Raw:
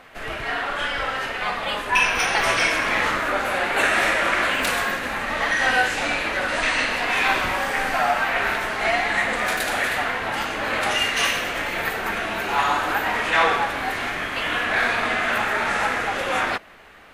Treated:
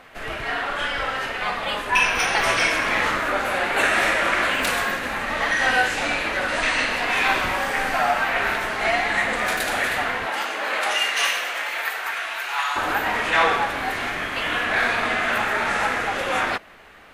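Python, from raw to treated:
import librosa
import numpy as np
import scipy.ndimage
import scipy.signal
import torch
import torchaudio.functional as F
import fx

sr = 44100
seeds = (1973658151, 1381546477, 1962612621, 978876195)

y = fx.highpass(x, sr, hz=fx.line((10.25, 340.0), (12.75, 1300.0)), slope=12, at=(10.25, 12.75), fade=0.02)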